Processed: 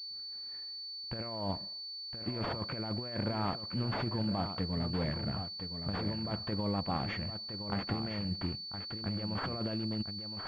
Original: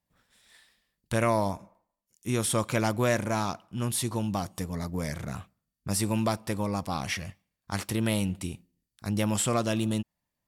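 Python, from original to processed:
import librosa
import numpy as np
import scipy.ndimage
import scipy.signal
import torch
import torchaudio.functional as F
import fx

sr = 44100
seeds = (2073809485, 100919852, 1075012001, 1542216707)

p1 = fx.peak_eq(x, sr, hz=1100.0, db=-3.0, octaves=0.85)
p2 = fx.over_compress(p1, sr, threshold_db=-30.0, ratio=-0.5)
p3 = p2 + fx.echo_single(p2, sr, ms=1016, db=-8.5, dry=0)
p4 = fx.pwm(p3, sr, carrier_hz=4500.0)
y = p4 * 10.0 ** (-4.0 / 20.0)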